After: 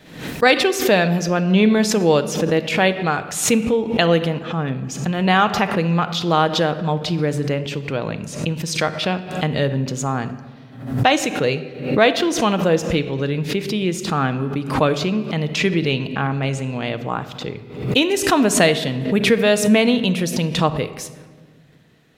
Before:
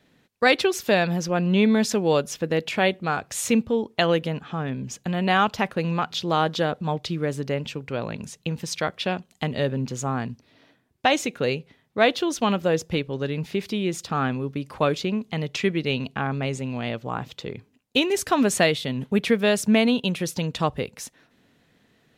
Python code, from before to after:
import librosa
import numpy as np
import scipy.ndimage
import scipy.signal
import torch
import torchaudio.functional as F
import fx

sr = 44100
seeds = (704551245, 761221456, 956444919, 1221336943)

y = fx.room_shoebox(x, sr, seeds[0], volume_m3=1600.0, walls='mixed', distance_m=0.55)
y = fx.pre_swell(y, sr, db_per_s=87.0)
y = y * librosa.db_to_amplitude(4.0)